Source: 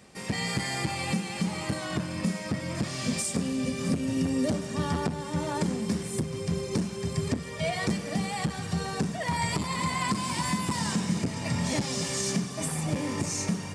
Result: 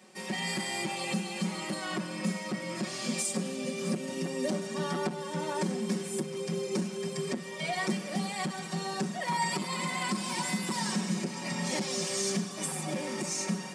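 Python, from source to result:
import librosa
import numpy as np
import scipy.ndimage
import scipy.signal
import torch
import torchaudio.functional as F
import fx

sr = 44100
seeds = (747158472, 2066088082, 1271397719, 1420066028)

y = scipy.signal.sosfilt(scipy.signal.butter(4, 200.0, 'highpass', fs=sr, output='sos'), x)
y = y + 0.9 * np.pad(y, (int(5.4 * sr / 1000.0), 0))[:len(y)]
y = y * librosa.db_to_amplitude(-4.0)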